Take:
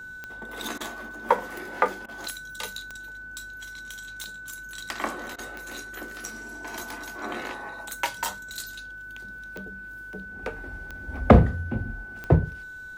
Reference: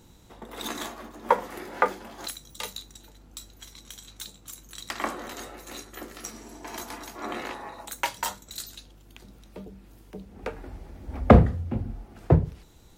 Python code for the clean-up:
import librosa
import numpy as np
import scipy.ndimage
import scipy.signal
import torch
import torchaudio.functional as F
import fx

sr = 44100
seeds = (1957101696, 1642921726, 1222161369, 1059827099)

y = fx.fix_declick_ar(x, sr, threshold=10.0)
y = fx.notch(y, sr, hz=1500.0, q=30.0)
y = fx.fix_interpolate(y, sr, at_s=(0.78, 2.06, 5.36), length_ms=23.0)